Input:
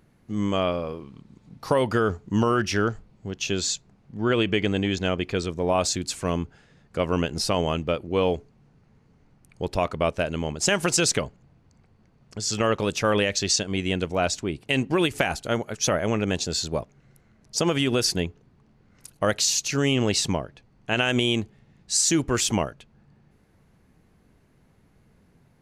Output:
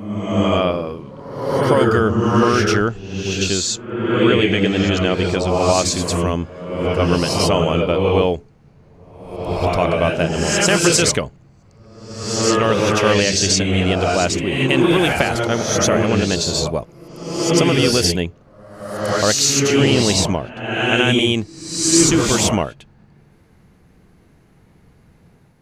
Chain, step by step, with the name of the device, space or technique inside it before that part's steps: reverse reverb (reverse; reverb RT60 1.1 s, pre-delay 86 ms, DRR -0.5 dB; reverse); gain +5 dB

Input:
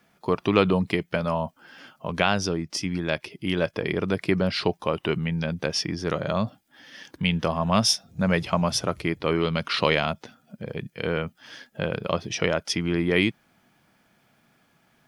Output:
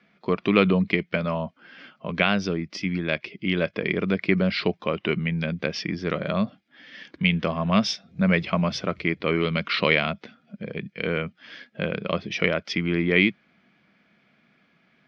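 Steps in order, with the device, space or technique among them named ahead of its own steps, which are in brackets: guitar cabinet (speaker cabinet 80–4500 Hz, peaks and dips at 110 Hz -9 dB, 200 Hz +5 dB, 860 Hz -8 dB, 2200 Hz +7 dB)

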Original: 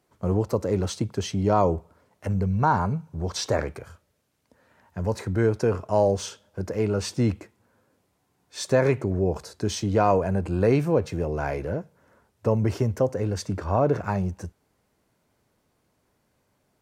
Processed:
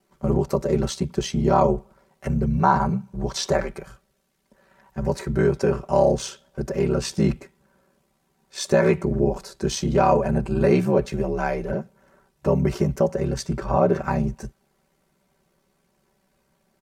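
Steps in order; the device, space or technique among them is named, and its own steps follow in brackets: ring-modulated robot voice (ring modulator 34 Hz; comb 5.2 ms, depth 81%); gain +3.5 dB

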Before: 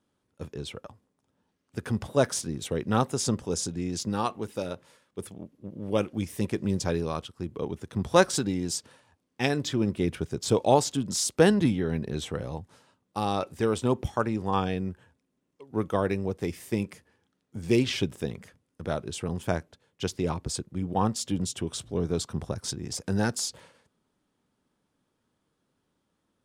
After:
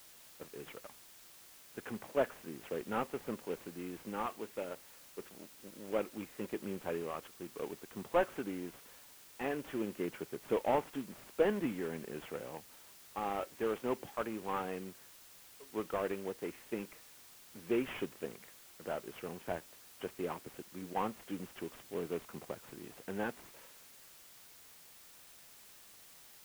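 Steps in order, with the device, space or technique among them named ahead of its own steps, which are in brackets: army field radio (BPF 300–3200 Hz; CVSD 16 kbps; white noise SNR 17 dB); gain -6.5 dB

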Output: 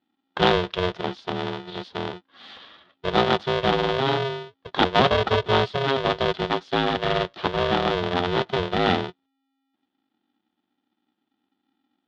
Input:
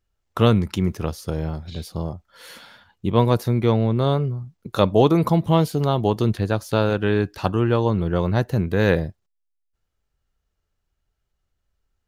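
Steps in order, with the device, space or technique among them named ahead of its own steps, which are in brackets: ring modulator pedal into a guitar cabinet (polarity switched at an audio rate 270 Hz; speaker cabinet 110–4100 Hz, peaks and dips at 150 Hz -6 dB, 2300 Hz -3 dB, 3400 Hz +8 dB); gain -2 dB

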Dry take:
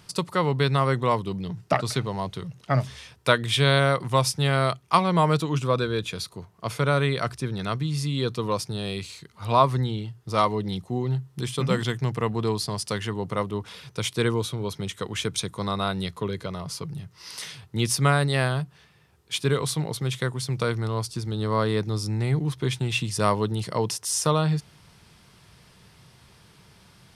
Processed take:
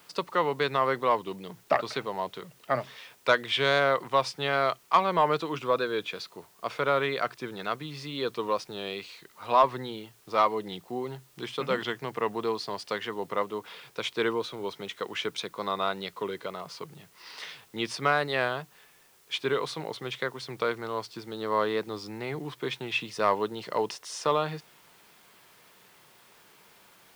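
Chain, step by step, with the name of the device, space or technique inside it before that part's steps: tape answering machine (BPF 370–3400 Hz; soft clip -9.5 dBFS, distortion -21 dB; wow and flutter; white noise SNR 31 dB)

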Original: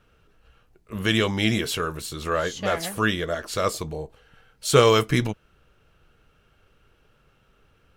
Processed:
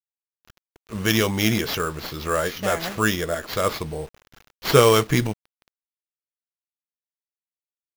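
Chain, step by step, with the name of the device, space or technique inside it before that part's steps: early 8-bit sampler (sample-rate reducer 8700 Hz, jitter 0%; bit-crush 8-bit); gain +1.5 dB

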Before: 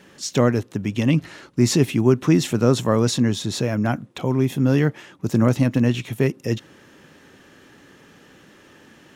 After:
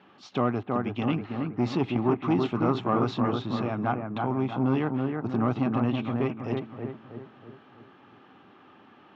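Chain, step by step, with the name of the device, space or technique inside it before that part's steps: analogue delay pedal into a guitar amplifier (analogue delay 0.322 s, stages 4096, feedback 48%, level -4.5 dB; tube stage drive 10 dB, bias 0.4; speaker cabinet 110–3500 Hz, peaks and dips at 150 Hz -6 dB, 510 Hz -6 dB, 780 Hz +9 dB, 1200 Hz +8 dB, 1800 Hz -7 dB); gain -5 dB

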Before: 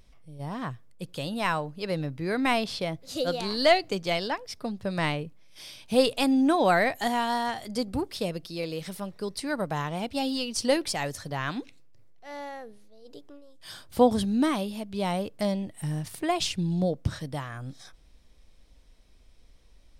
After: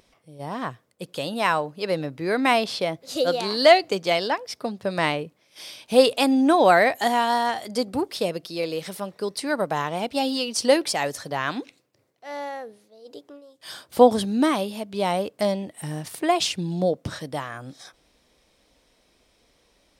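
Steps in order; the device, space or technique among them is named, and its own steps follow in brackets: filter by subtraction (in parallel: LPF 470 Hz 12 dB/oct + phase invert); on the sum: gain +4.5 dB

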